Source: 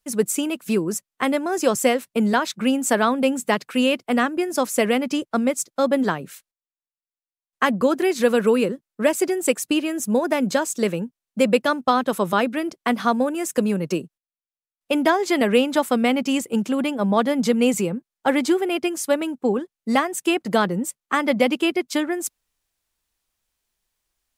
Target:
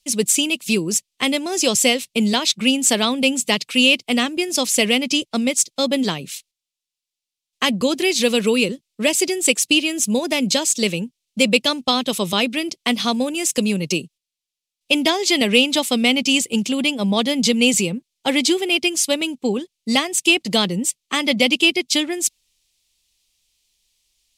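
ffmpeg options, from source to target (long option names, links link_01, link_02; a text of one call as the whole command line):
ffmpeg -i in.wav -af "lowshelf=frequency=120:gain=-10.5,aexciter=amount=9.4:drive=8.9:freq=2400,aemphasis=mode=reproduction:type=riaa,volume=-3.5dB" out.wav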